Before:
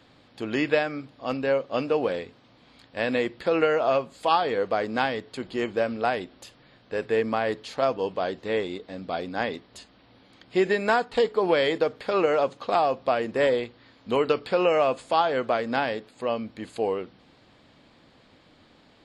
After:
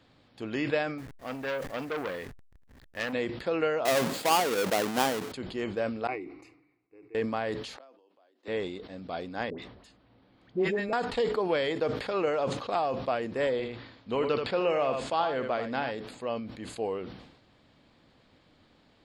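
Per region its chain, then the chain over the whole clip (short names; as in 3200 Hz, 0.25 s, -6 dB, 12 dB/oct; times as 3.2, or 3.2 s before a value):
0.98–3.13 level-crossing sampler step -43 dBFS + bell 1800 Hz +9.5 dB 0.38 oct + core saturation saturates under 2800 Hz
3.85–5.32 half-waves squared off + HPF 180 Hz
6.07–7.15 vowel filter u + fixed phaser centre 890 Hz, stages 6
7.76–8.48 steep high-pass 250 Hz 48 dB/oct + notch 440 Hz, Q 8.5 + flipped gate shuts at -27 dBFS, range -31 dB
9.5–10.93 high shelf 2900 Hz -10.5 dB + dispersion highs, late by 84 ms, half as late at 970 Hz
13.51–15.91 LPF 6100 Hz + echo 80 ms -9.5 dB
whole clip: low shelf 130 Hz +5 dB; sustainer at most 65 dB/s; gain -6.5 dB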